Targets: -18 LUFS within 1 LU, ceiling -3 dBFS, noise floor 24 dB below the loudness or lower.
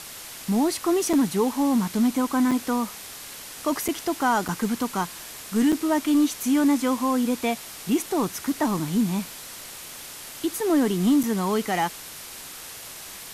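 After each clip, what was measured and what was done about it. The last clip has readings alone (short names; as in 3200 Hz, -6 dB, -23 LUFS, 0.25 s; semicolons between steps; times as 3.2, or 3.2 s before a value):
dropouts 6; longest dropout 5.7 ms; noise floor -40 dBFS; noise floor target -48 dBFS; loudness -24.0 LUFS; peak -11.5 dBFS; loudness target -18.0 LUFS
-> interpolate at 1.13/2.51/3.88/4.48/5.72/11.23, 5.7 ms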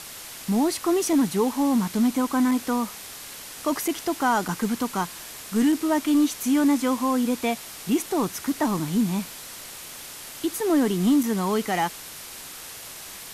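dropouts 0; noise floor -40 dBFS; noise floor target -48 dBFS
-> denoiser 8 dB, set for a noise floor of -40 dBFS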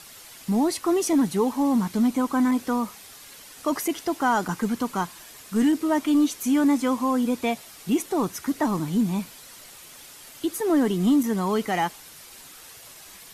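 noise floor -46 dBFS; noise floor target -48 dBFS
-> denoiser 6 dB, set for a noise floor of -46 dBFS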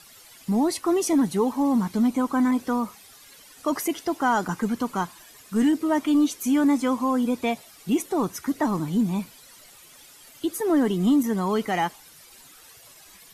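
noise floor -50 dBFS; loudness -24.5 LUFS; peak -12.0 dBFS; loudness target -18.0 LUFS
-> gain +6.5 dB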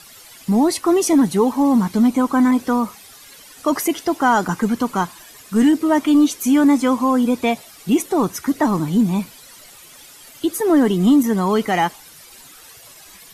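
loudness -18.0 LUFS; peak -5.5 dBFS; noise floor -44 dBFS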